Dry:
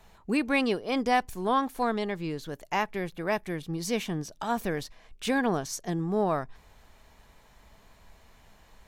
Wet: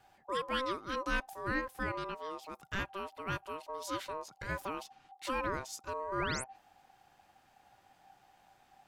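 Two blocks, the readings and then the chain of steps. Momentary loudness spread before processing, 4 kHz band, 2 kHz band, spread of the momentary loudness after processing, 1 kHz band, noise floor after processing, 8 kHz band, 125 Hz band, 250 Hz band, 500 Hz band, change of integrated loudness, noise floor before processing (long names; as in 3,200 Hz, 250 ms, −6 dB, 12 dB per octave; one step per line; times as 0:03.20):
8 LU, −5.5 dB, −4.5 dB, 8 LU, −7.5 dB, −67 dBFS, −7.0 dB, −9.5 dB, −14.0 dB, −9.5 dB, −8.5 dB, −58 dBFS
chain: sound drawn into the spectrogram rise, 0:06.18–0:06.44, 1,000–11,000 Hz −33 dBFS
ring modulation 780 Hz
level −6 dB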